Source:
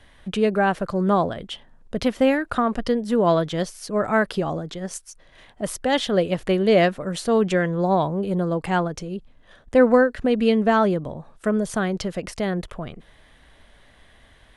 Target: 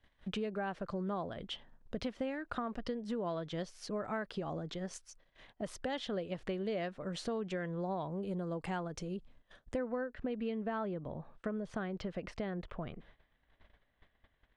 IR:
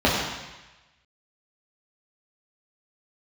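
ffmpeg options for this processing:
-af "asetnsamples=n=441:p=0,asendcmd='8.11 lowpass f 9100;9.76 lowpass f 3100',lowpass=5.7k,agate=range=-16dB:threshold=-49dB:ratio=16:detection=peak,acompressor=threshold=-28dB:ratio=5,volume=-7.5dB"

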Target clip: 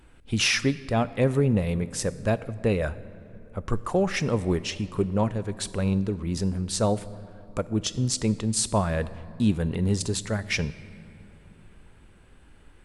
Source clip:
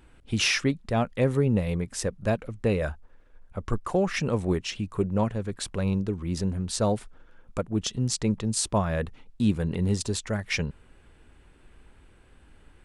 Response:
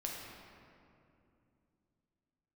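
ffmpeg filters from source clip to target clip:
-filter_complex "[0:a]asplit=2[a][b];[b]aemphasis=mode=production:type=cd[c];[1:a]atrim=start_sample=2205,asetrate=39249,aresample=44100[d];[c][d]afir=irnorm=-1:irlink=0,volume=-15dB[e];[a][e]amix=inputs=2:normalize=0"

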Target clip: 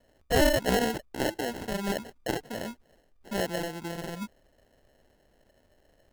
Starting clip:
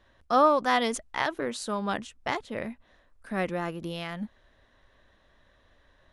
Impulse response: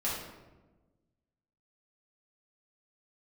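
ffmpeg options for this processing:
-af "acrusher=samples=37:mix=1:aa=0.000001,lowshelf=f=190:g=-4"

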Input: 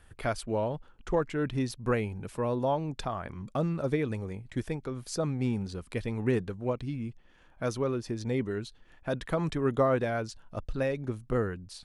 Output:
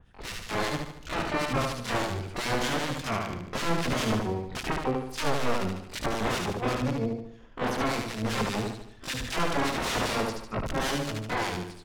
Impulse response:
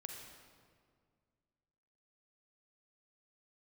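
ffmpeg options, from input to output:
-filter_complex "[0:a]aeval=exprs='(mod(20*val(0)+1,2)-1)/20':c=same,acrossover=split=1600[a][b];[a]aeval=exprs='val(0)*(1-1/2+1/2*cos(2*PI*5.1*n/s))':c=same[c];[b]aeval=exprs='val(0)*(1-1/2-1/2*cos(2*PI*5.1*n/s))':c=same[d];[c][d]amix=inputs=2:normalize=0,asplit=2[e][f];[f]aecho=0:1:74|148|222|296|370|444:0.668|0.327|0.16|0.0786|0.0385|0.0189[g];[e][g]amix=inputs=2:normalize=0,asplit=2[h][i];[i]asetrate=88200,aresample=44100,atempo=0.5,volume=-2dB[j];[h][j]amix=inputs=2:normalize=0,aemphasis=mode=reproduction:type=75fm,dynaudnorm=f=120:g=7:m=5.5dB,adynamicequalizer=threshold=0.00398:dfrequency=3700:dqfactor=0.7:tfrequency=3700:tqfactor=0.7:attack=5:release=100:ratio=0.375:range=2:mode=boostabove:tftype=highshelf"

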